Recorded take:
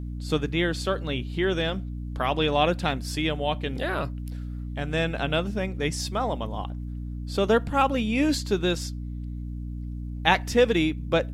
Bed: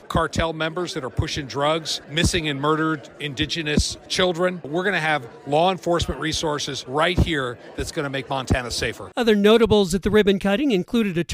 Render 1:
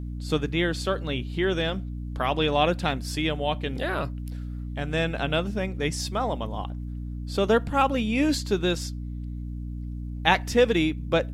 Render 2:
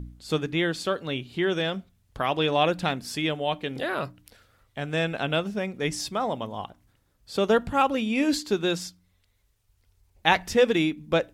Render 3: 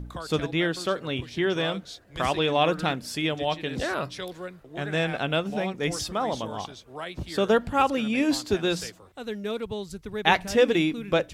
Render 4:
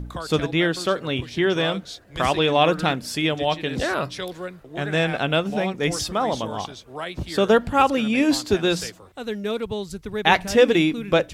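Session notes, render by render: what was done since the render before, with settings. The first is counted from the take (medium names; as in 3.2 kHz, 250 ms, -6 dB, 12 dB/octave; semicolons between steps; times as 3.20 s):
no audible change
de-hum 60 Hz, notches 5
add bed -16.5 dB
trim +4.5 dB; peak limiter -2 dBFS, peak gain reduction 2.5 dB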